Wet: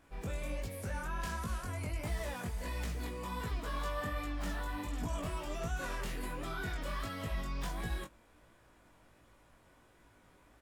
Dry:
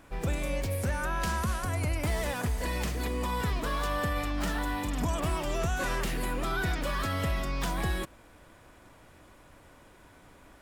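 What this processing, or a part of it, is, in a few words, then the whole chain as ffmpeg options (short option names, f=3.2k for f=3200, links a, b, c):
double-tracked vocal: -filter_complex "[0:a]asplit=2[a][b];[b]adelay=17,volume=-11.5dB[c];[a][c]amix=inputs=2:normalize=0,flanger=delay=17.5:depth=5:speed=1.4,volume=-6dB"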